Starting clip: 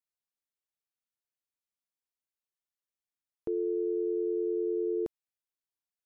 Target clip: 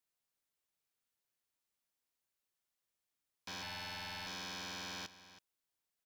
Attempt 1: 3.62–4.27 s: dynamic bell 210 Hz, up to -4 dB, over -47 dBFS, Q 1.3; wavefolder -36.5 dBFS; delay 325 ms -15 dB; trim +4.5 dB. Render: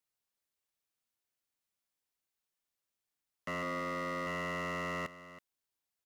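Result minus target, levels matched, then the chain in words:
wavefolder: distortion -10 dB
3.62–4.27 s: dynamic bell 210 Hz, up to -4 dB, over -47 dBFS, Q 1.3; wavefolder -44.5 dBFS; delay 325 ms -15 dB; trim +4.5 dB

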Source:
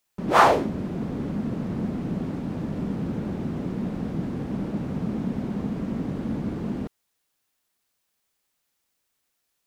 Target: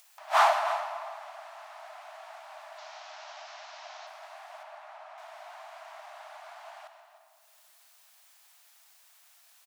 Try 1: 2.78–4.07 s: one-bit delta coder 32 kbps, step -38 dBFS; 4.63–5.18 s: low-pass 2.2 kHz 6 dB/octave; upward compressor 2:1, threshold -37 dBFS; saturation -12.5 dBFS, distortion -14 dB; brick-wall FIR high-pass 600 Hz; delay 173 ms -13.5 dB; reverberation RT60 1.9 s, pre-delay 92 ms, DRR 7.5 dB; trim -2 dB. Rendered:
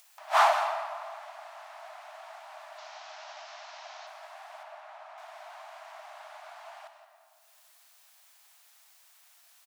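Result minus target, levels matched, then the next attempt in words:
echo 132 ms early
2.78–4.07 s: one-bit delta coder 32 kbps, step -38 dBFS; 4.63–5.18 s: low-pass 2.2 kHz 6 dB/octave; upward compressor 2:1, threshold -37 dBFS; saturation -12.5 dBFS, distortion -14 dB; brick-wall FIR high-pass 600 Hz; delay 305 ms -13.5 dB; reverberation RT60 1.9 s, pre-delay 92 ms, DRR 7.5 dB; trim -2 dB

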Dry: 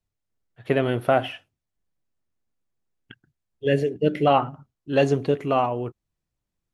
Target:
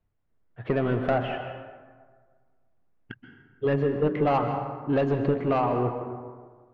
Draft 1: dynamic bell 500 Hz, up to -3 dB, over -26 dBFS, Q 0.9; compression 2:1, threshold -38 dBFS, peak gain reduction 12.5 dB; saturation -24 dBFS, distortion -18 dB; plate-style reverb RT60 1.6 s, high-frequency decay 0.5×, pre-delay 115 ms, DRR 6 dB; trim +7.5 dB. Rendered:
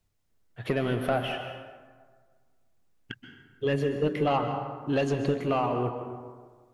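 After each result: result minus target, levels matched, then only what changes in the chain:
compression: peak gain reduction +3.5 dB; 2 kHz band +2.5 dB
change: compression 2:1, threshold -31 dBFS, peak gain reduction 9 dB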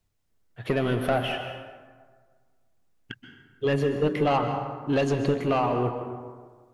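2 kHz band +2.5 dB
add after dynamic bell: low-pass 1.8 kHz 12 dB/octave

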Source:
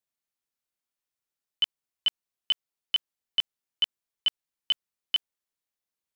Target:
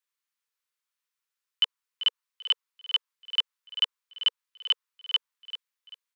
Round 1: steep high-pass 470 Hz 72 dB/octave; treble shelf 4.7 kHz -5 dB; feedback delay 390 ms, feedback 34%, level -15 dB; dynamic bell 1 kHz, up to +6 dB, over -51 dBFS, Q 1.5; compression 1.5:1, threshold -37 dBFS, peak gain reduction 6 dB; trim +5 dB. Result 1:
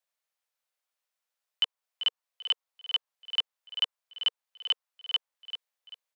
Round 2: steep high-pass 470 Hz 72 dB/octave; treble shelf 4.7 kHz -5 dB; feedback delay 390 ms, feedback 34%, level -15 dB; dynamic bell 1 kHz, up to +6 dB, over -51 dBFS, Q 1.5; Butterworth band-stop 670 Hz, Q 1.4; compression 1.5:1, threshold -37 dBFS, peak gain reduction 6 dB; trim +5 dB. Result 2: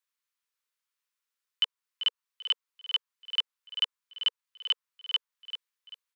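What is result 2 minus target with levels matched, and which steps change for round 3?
compression: peak gain reduction +3 dB
change: compression 1.5:1, threshold -28 dBFS, peak gain reduction 3 dB

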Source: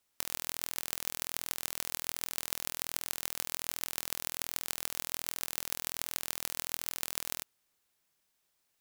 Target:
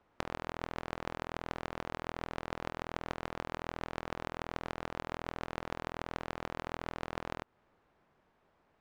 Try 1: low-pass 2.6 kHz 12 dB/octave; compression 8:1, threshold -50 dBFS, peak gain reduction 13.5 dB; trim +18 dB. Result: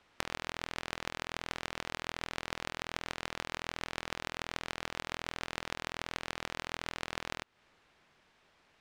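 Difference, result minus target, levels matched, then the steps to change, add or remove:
1 kHz band -3.0 dB
change: low-pass 1.1 kHz 12 dB/octave

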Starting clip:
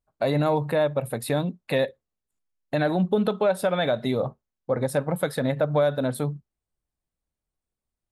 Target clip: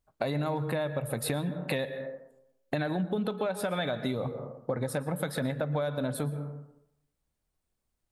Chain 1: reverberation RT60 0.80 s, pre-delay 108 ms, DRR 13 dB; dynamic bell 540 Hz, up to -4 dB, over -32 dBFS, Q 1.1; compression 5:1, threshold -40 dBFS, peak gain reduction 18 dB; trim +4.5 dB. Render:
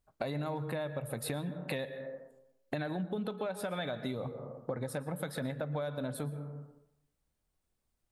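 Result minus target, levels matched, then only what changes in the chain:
compression: peak gain reduction +5.5 dB
change: compression 5:1, threshold -33 dBFS, peak gain reduction 12.5 dB

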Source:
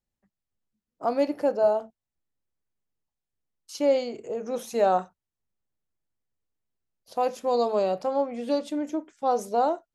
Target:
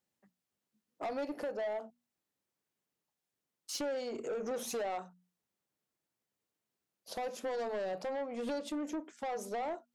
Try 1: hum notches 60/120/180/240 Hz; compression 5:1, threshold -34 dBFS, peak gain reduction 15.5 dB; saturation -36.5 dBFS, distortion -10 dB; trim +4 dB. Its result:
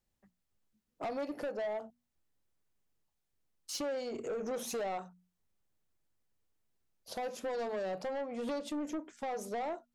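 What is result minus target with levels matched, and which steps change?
125 Hz band +3.0 dB
add after compression: high-pass 170 Hz 12 dB/octave

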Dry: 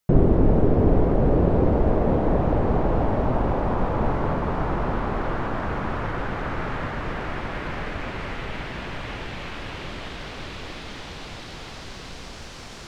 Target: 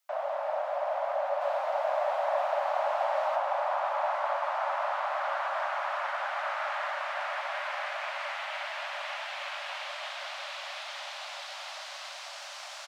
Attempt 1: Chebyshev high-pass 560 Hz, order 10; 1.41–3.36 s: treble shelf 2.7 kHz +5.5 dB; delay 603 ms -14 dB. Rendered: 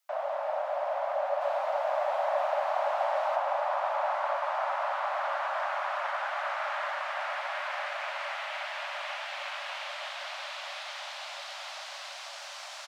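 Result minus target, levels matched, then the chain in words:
echo 230 ms late
Chebyshev high-pass 560 Hz, order 10; 1.41–3.36 s: treble shelf 2.7 kHz +5.5 dB; delay 373 ms -14 dB

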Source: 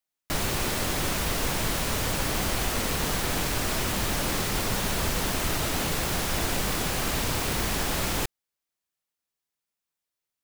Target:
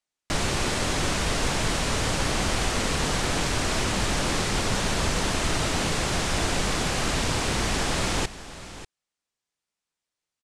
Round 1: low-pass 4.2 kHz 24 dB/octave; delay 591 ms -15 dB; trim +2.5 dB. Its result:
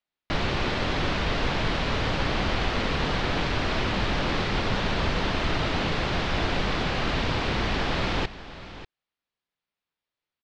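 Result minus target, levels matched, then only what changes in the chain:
8 kHz band -16.0 dB
change: low-pass 9 kHz 24 dB/octave

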